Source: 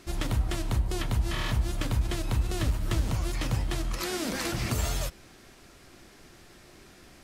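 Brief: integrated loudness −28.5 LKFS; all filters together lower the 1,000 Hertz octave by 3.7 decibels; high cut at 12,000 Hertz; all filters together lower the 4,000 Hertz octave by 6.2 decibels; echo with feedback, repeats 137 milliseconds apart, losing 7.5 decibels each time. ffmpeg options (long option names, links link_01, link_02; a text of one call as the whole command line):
ffmpeg -i in.wav -af "lowpass=12000,equalizer=frequency=1000:width_type=o:gain=-4.5,equalizer=frequency=4000:width_type=o:gain=-8,aecho=1:1:137|274|411|548|685:0.422|0.177|0.0744|0.0312|0.0131,volume=2dB" out.wav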